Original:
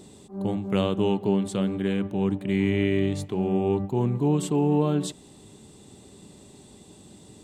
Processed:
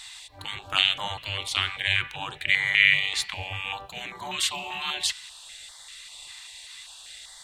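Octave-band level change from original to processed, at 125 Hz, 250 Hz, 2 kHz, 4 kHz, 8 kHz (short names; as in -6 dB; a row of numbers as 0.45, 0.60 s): -14.5, -26.5, +16.0, +15.5, +7.5 dB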